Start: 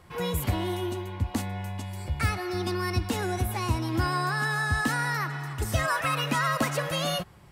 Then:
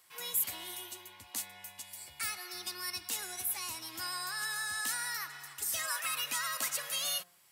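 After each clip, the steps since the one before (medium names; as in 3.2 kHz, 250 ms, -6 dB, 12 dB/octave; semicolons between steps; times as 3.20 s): differentiator; de-hum 176.3 Hz, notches 9; trim +3 dB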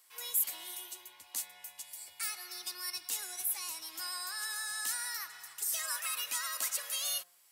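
tone controls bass -15 dB, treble +5 dB; trim -4 dB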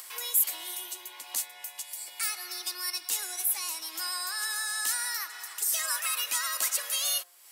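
high-pass 260 Hz 24 dB/octave; upward compressor, threshold -40 dBFS; trim +6 dB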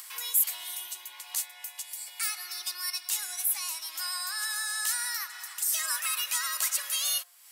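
high-pass 850 Hz 12 dB/octave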